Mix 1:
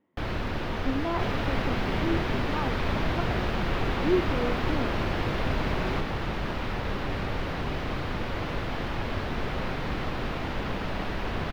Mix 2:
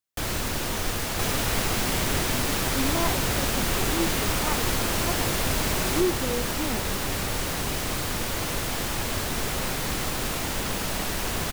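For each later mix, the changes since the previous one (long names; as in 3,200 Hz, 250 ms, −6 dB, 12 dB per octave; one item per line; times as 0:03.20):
speech: entry +1.90 s
master: remove high-frequency loss of the air 330 metres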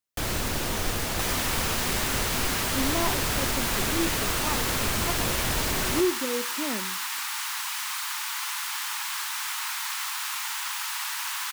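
second sound: add Butterworth high-pass 870 Hz 72 dB per octave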